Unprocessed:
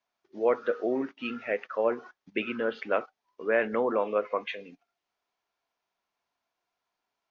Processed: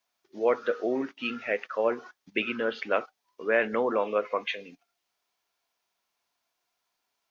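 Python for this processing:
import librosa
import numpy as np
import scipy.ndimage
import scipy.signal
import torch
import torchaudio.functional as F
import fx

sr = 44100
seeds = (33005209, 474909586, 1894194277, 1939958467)

y = fx.high_shelf(x, sr, hz=3100.0, db=10.5)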